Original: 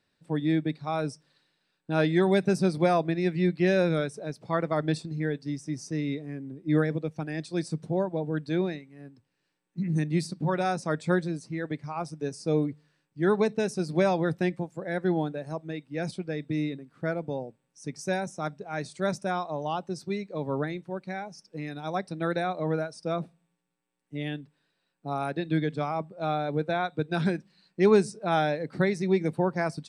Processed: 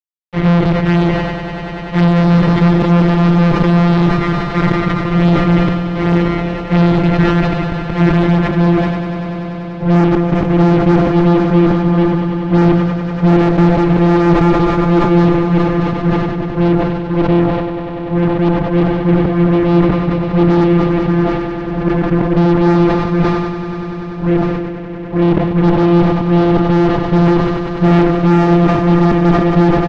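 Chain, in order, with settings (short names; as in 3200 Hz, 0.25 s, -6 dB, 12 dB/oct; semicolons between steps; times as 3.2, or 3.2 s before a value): sample sorter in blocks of 256 samples; bell 1600 Hz -11 dB 0.72 oct; comb 6.4 ms, depth 83%; auto swell 0.175 s; envelope flanger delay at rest 2.3 ms, full sweep at -22 dBFS; low-pass sweep 2100 Hz -> 340 Hz, 8.27–8.8; fuzz box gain 31 dB, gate -39 dBFS; air absorption 200 m; swelling echo 97 ms, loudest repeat 5, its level -13 dB; reverb RT60 3.6 s, pre-delay 32 ms, DRR 19.5 dB; sustainer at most 32 dB/s; gain +5.5 dB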